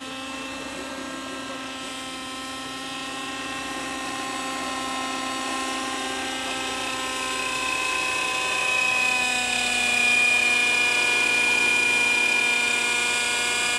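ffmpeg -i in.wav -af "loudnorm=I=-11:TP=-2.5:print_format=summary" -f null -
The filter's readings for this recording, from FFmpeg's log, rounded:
Input Integrated:    -21.1 LUFS
Input True Peak:     -10.6 dBTP
Input LRA:            12.4 LU
Input Threshold:     -31.7 LUFS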